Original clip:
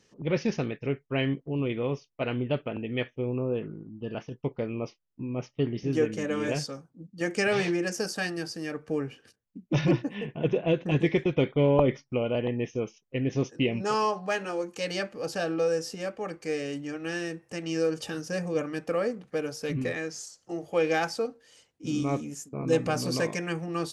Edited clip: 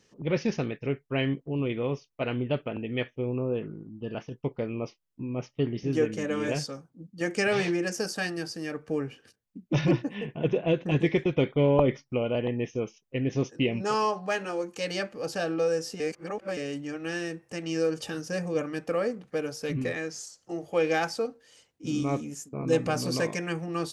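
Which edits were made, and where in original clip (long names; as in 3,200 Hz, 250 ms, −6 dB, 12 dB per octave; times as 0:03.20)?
0:16.00–0:16.57: reverse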